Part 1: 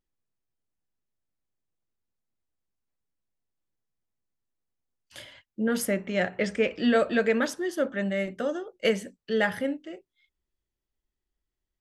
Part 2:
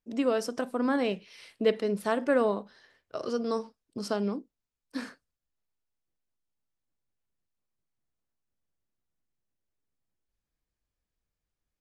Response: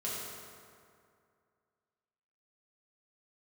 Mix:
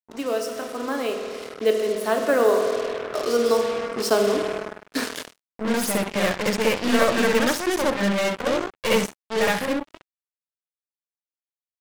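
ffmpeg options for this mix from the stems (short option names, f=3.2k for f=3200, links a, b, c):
-filter_complex "[0:a]aeval=exprs='clip(val(0),-1,0.0266)':c=same,volume=-1dB,asplit=2[a][b];[b]volume=-6dB[c];[1:a]highpass=f=270:w=0.5412,highpass=f=270:w=1.3066,highshelf=f=7.8k:g=5,volume=-2dB,asplit=3[d][e][f];[e]volume=-3.5dB[g];[f]apad=whole_len=520502[h];[a][h]sidechaingate=range=-10dB:threshold=-60dB:ratio=16:detection=peak[i];[2:a]atrim=start_sample=2205[j];[g][j]afir=irnorm=-1:irlink=0[k];[c]aecho=0:1:65|130|195|260:1|0.27|0.0729|0.0197[l];[i][d][k][l]amix=inputs=4:normalize=0,acrusher=bits=5:mix=0:aa=0.5,dynaudnorm=f=400:g=13:m=15dB,lowshelf=f=82:g=-8"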